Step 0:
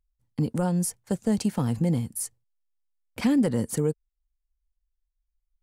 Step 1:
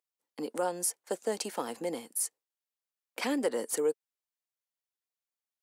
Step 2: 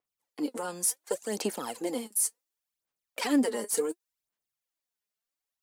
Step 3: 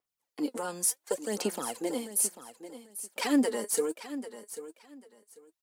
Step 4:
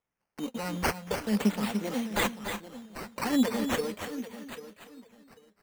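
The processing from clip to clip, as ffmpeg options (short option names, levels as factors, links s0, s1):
-af "highpass=f=370:w=0.5412,highpass=f=370:w=1.3066"
-af "alimiter=limit=0.0708:level=0:latency=1:release=20,aphaser=in_gain=1:out_gain=1:delay=4.9:decay=0.66:speed=0.69:type=sinusoidal,adynamicequalizer=threshold=0.00501:dfrequency=4200:dqfactor=0.7:tfrequency=4200:tqfactor=0.7:attack=5:release=100:ratio=0.375:range=2:mode=boostabove:tftype=highshelf"
-af "aecho=1:1:792|1584:0.224|0.047"
-af "lowshelf=f=250:t=q:w=3:g=7,acrusher=samples=10:mix=1:aa=0.000001:lfo=1:lforange=6:lforate=0.41,aecho=1:1:285|295|328:0.2|0.335|0.1"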